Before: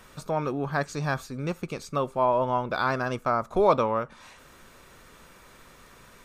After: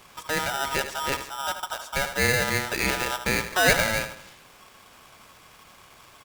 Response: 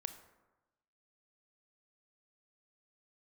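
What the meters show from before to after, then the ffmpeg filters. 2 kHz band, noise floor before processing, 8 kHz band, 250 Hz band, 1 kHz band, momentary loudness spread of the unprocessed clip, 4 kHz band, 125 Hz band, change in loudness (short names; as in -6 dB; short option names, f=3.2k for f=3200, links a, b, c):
+10.5 dB, -53 dBFS, n/a, -2.0 dB, -2.5 dB, 10 LU, +14.5 dB, -1.5 dB, +2.0 dB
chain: -filter_complex "[0:a]asplit=2[a][b];[b]adelay=78,lowpass=f=1.9k:p=1,volume=-9.5dB,asplit=2[c][d];[d]adelay=78,lowpass=f=1.9k:p=1,volume=0.47,asplit=2[e][f];[f]adelay=78,lowpass=f=1.9k:p=1,volume=0.47,asplit=2[g][h];[h]adelay=78,lowpass=f=1.9k:p=1,volume=0.47,asplit=2[i][j];[j]adelay=78,lowpass=f=1.9k:p=1,volume=0.47[k];[c][e][g][i][k]amix=inputs=5:normalize=0[l];[a][l]amix=inputs=2:normalize=0,aeval=exprs='val(0)*sgn(sin(2*PI*1100*n/s))':c=same"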